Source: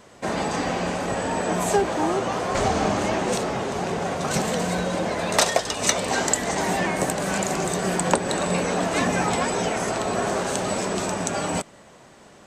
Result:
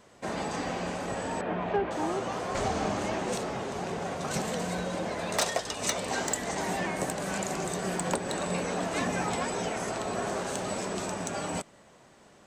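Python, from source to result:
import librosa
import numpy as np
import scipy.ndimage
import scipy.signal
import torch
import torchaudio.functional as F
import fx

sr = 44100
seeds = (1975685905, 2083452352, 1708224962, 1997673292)

y = fx.lowpass(x, sr, hz=3000.0, slope=24, at=(1.41, 1.91))
y = np.clip(y, -10.0 ** (-11.5 / 20.0), 10.0 ** (-11.5 / 20.0))
y = y * 10.0 ** (-7.5 / 20.0)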